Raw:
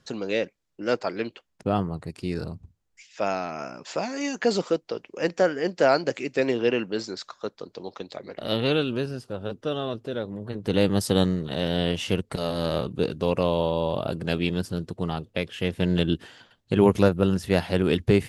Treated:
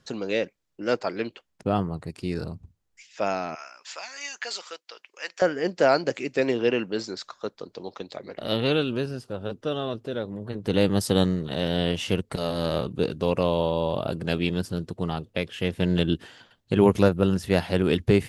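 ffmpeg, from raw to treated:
ffmpeg -i in.wav -filter_complex "[0:a]asettb=1/sr,asplit=3[link_01][link_02][link_03];[link_01]atrim=end=3.554[link_04];[link_02]atrim=start=3.55:end=5.42,asetpts=PTS-STARTPTS,afade=type=in:duration=0.004:curve=qsin,afade=type=out:start_time=1.866:duration=0.004:curve=qsin,highpass=1400[link_05];[link_03]atrim=start=5.416[link_06];[link_04][link_05]acrossfade=duration=0.004:curve1=hsin:curve2=qsin[link_07];[link_07][link_06]acrossfade=duration=0.004:curve1=qsin:curve2=hsin" out.wav

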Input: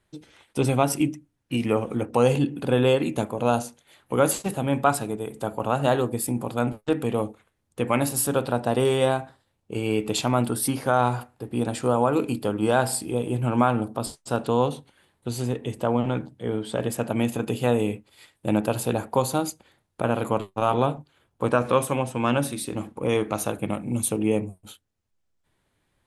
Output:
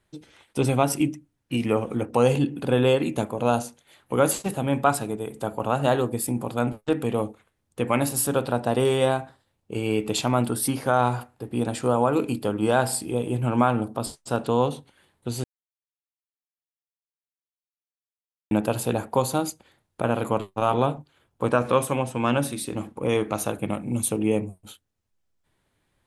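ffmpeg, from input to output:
ffmpeg -i in.wav -filter_complex "[0:a]asplit=3[link_01][link_02][link_03];[link_01]atrim=end=15.44,asetpts=PTS-STARTPTS,afade=type=out:start_time=15.436:duration=0.004:curve=hsin[link_04];[link_02]atrim=start=15.44:end=18.51,asetpts=PTS-STARTPTS,volume=0[link_05];[link_03]atrim=start=18.51,asetpts=PTS-STARTPTS,afade=type=in:duration=0.004:curve=hsin[link_06];[link_04][link_05][link_06]concat=n=3:v=0:a=1" out.wav

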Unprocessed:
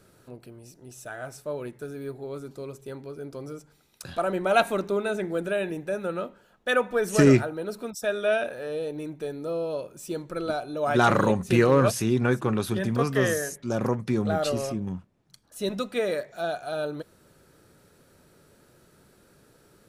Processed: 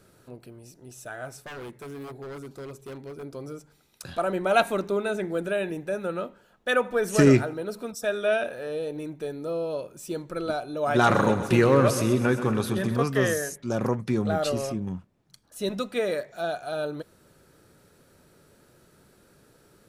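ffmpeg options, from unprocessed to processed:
ffmpeg -i in.wav -filter_complex "[0:a]asettb=1/sr,asplit=3[link_01][link_02][link_03];[link_01]atrim=end=1.434[link_04];[link_02]atrim=start=1.43:end=3.23,asetpts=PTS-STARTPTS,afade=type=in:duration=0.004:curve=qsin,afade=type=out:start_time=1.796:duration=0.004:curve=qsin,aeval=exprs='0.0211*(abs(mod(val(0)/0.0211+3,4)-2)-1)':channel_layout=same[link_05];[link_03]atrim=start=3.226[link_06];[link_04][link_05]acrossfade=duration=0.004:curve1=hsin:curve2=qsin[link_07];[link_07][link_06]acrossfade=duration=0.004:curve1=qsin:curve2=hsin,asettb=1/sr,asplit=3[link_08][link_09][link_10];[link_08]atrim=end=6.764[link_11];[link_09]atrim=start=6.76:end=9.03,asetpts=PTS-STARTPTS,afade=type=in:duration=0.004:curve=qsin,afade=type=out:start_time=2.266:duration=0.004:curve=qsin,aecho=1:1:84|168|252:0.0631|0.0328|0.0171,atrim=end_sample=100107[link_12];[link_10]atrim=start=9.026[link_13];[link_11][link_12]acrossfade=duration=0.004:curve1=hsin:curve2=qsin[link_14];[link_14][link_13]acrossfade=duration=0.004:curve1=qsin:curve2=hsin,asettb=1/sr,asplit=3[link_15][link_16][link_17];[link_15]atrim=end=10.804[link_18];[link_16]atrim=start=10.8:end=12.96,asetpts=PTS-STARTPTS,afade=type=in:duration=0.004:curve=qsin,afade=type=out:start_time=2.156:duration=0.004:curve=qsin,aecho=1:1:129|258|387|516|645|774|903:0.266|0.157|0.0926|0.0546|0.0322|0.019|0.0112,atrim=end_sample=95256[link_19];[link_17]atrim=start=12.956[link_20];[link_18][link_19]acrossfade=duration=0.004:curve1=hsin:curve2=qsin[link_21];[link_21][link_20]acrossfade=duration=0.004:curve1=qsin:curve2=hsin" out.wav

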